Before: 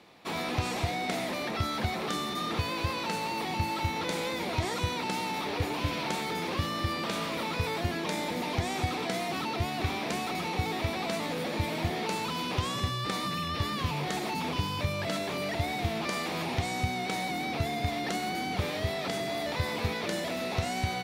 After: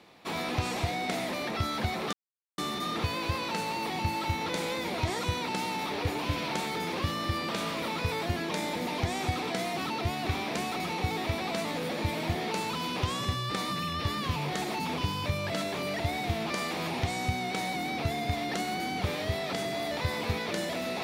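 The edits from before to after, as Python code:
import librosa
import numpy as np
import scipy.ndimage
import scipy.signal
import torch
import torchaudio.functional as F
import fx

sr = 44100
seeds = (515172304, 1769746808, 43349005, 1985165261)

y = fx.edit(x, sr, fx.insert_silence(at_s=2.13, length_s=0.45), tone=tone)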